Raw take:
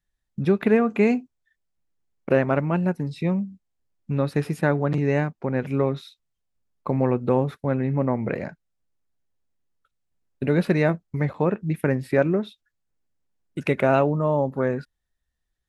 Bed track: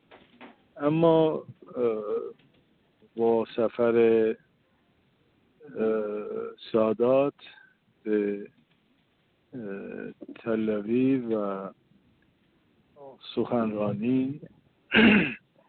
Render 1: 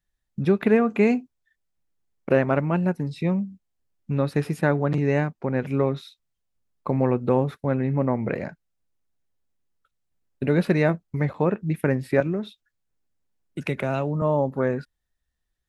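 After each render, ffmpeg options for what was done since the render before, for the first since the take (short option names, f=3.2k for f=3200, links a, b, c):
-filter_complex "[0:a]asettb=1/sr,asplit=3[a][b][c];[a]atrim=end=12.204[d];[b]atrim=start=12.2:end=14.22,asetpts=PTS-STARTPTS,afade=t=in:d=0.004:c=qsin,afade=t=out:st=2.016:d=0.004:c=qsin,acrossover=split=170|3000[e][f][g];[f]acompressor=threshold=-29dB:ratio=2:attack=3.2:release=140:knee=2.83:detection=peak[h];[e][h][g]amix=inputs=3:normalize=0[i];[c]atrim=start=14.216[j];[d][i]acrossfade=d=0.004:c1=hsin:c2=qsin[k];[k][j]acrossfade=d=0.004:c1=qsin:c2=hsin"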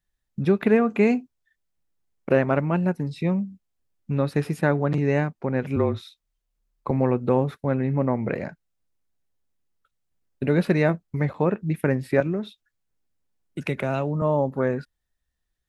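-filter_complex "[0:a]asettb=1/sr,asplit=3[a][b][c];[a]atrim=end=5.764[d];[b]atrim=start=5.76:end=6.91,asetpts=PTS-STARTPTS,afade=t=in:d=0.004:c=qsin,afade=t=out:st=1.146:d=0.004:c=qsin,afreqshift=-33[e];[c]atrim=start=6.906[f];[d][e]acrossfade=d=0.004:c1=hsin:c2=qsin[g];[g][f]acrossfade=d=0.004:c1=qsin:c2=hsin"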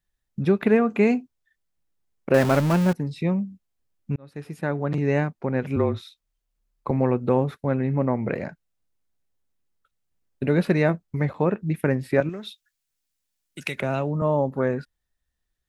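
-filter_complex "[0:a]asettb=1/sr,asplit=3[a][b][c];[a]atrim=end=2.344[d];[b]atrim=start=2.34:end=2.93,asetpts=PTS-STARTPTS,afade=t=in:d=0.004:c=qsin,afade=t=out:st=0.586:d=0.004:c=qsin,aeval=exprs='val(0)+0.5*0.0708*sgn(val(0))':c=same[e];[c]atrim=start=2.926[f];[d][e]acrossfade=d=0.004:c1=hsin:c2=qsin[g];[g][f]acrossfade=d=0.004:c1=qsin:c2=hsin,asettb=1/sr,asplit=3[h][i][j];[h]atrim=end=12.294[k];[i]atrim=start=12.29:end=13.8,asetpts=PTS-STARTPTS,afade=t=in:d=0.004:c=qsin,afade=t=out:st=1.506:d=0.004:c=qsin,tiltshelf=f=1.5k:g=-9[l];[j]atrim=start=13.796[m];[k][l]acrossfade=d=0.004:c1=hsin:c2=qsin[n];[n][m]acrossfade=d=0.004:c1=qsin:c2=hsin,asplit=2[o][p];[o]atrim=end=4.16,asetpts=PTS-STARTPTS,afade=t=out:st=4.156:d=0.004:c=hsin[q];[p]atrim=start=4.16,asetpts=PTS-STARTPTS,afade=t=in:d=0.96[r];[q][r]concat=n=2:v=0:a=1"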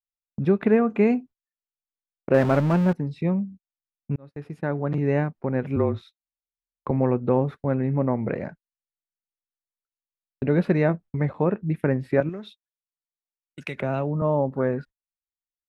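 -af "agate=range=-30dB:threshold=-40dB:ratio=16:detection=peak,lowpass=f=1.7k:p=1"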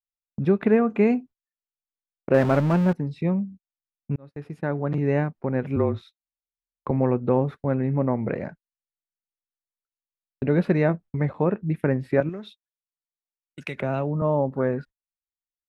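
-af anull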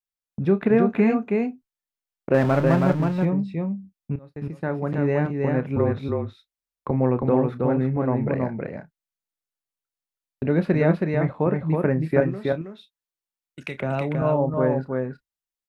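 -filter_complex "[0:a]asplit=2[a][b];[b]adelay=31,volume=-12.5dB[c];[a][c]amix=inputs=2:normalize=0,aecho=1:1:322:0.668"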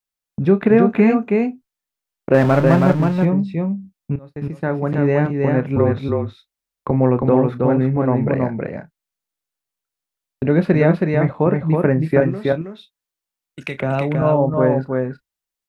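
-af "volume=5.5dB,alimiter=limit=-3dB:level=0:latency=1"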